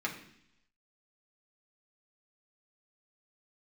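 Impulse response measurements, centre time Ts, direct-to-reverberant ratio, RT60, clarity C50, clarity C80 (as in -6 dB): 19 ms, -2.5 dB, 0.70 s, 9.5 dB, 12.0 dB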